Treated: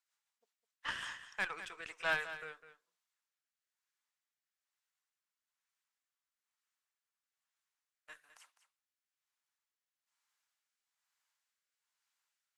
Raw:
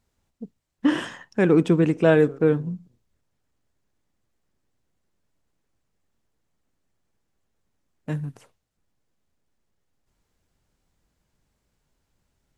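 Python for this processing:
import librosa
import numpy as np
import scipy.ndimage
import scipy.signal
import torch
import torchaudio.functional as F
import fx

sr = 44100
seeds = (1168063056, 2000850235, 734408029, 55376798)

y = scipy.signal.sosfilt(scipy.signal.butter(4, 1000.0, 'highpass', fs=sr, output='sos'), x)
y = fx.cheby_harmonics(y, sr, harmonics=(4,), levels_db=(-18,), full_scale_db=-14.5)
y = fx.rotary_switch(y, sr, hz=5.5, then_hz=1.1, switch_at_s=0.73)
y = np.clip(10.0 ** (20.0 / 20.0) * y, -1.0, 1.0) / 10.0 ** (20.0 / 20.0)
y = y + 10.0 ** (-12.5 / 20.0) * np.pad(y, (int(205 * sr / 1000.0), 0))[:len(y)]
y = y * librosa.db_to_amplitude(-5.0)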